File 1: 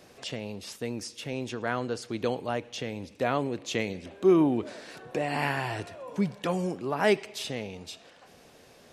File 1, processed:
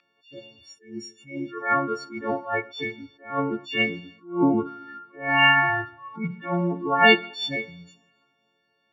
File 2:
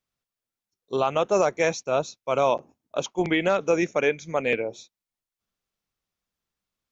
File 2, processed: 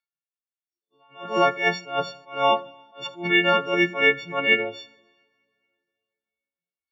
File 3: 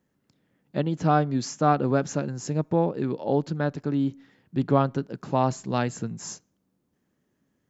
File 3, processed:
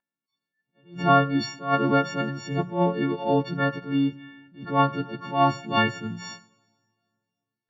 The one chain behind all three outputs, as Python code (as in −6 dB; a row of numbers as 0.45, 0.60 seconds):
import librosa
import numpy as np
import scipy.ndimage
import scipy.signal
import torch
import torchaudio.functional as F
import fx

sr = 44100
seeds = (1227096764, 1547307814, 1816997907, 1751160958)

y = fx.freq_snap(x, sr, grid_st=4)
y = scipy.signal.sosfilt(scipy.signal.butter(2, 140.0, 'highpass', fs=sr, output='sos'), y)
y = fx.noise_reduce_blind(y, sr, reduce_db=26)
y = scipy.signal.sosfilt(scipy.signal.butter(4, 3500.0, 'lowpass', fs=sr, output='sos'), y)
y = fx.peak_eq(y, sr, hz=510.0, db=-6.0, octaves=0.87)
y = fx.hum_notches(y, sr, base_hz=60, count=3)
y = fx.rev_double_slope(y, sr, seeds[0], early_s=0.99, late_s=2.5, knee_db=-18, drr_db=16.5)
y = fx.attack_slew(y, sr, db_per_s=160.0)
y = y * 10.0 ** (-26 / 20.0) / np.sqrt(np.mean(np.square(y)))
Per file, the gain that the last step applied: +8.0, +4.0, +5.0 decibels